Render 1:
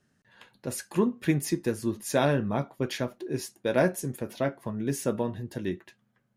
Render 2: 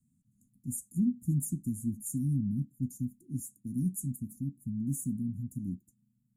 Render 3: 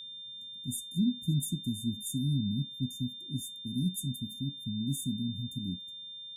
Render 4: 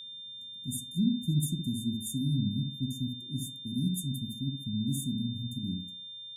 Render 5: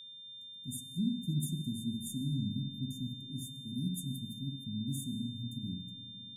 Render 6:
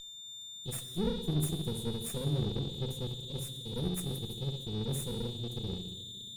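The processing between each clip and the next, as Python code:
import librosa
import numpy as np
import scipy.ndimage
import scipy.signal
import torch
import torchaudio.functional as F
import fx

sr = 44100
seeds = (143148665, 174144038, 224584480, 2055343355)

y1 = scipy.signal.sosfilt(scipy.signal.cheby1(5, 1.0, [260.0, 7200.0], 'bandstop', fs=sr, output='sos'), x)
y2 = y1 + 10.0 ** (-42.0 / 20.0) * np.sin(2.0 * np.pi * 3600.0 * np.arange(len(y1)) / sr)
y3 = fx.echo_wet_lowpass(y2, sr, ms=66, feedback_pct=36, hz=1200.0, wet_db=-4.5)
y4 = fx.rev_freeverb(y3, sr, rt60_s=4.0, hf_ratio=0.55, predelay_ms=60, drr_db=10.0)
y4 = y4 * 10.0 ** (-5.5 / 20.0)
y5 = fx.lower_of_two(y4, sr, delay_ms=1.6)
y5 = fx.rev_gated(y5, sr, seeds[0], gate_ms=380, shape='falling', drr_db=11.5)
y5 = y5 * 10.0 ** (3.5 / 20.0)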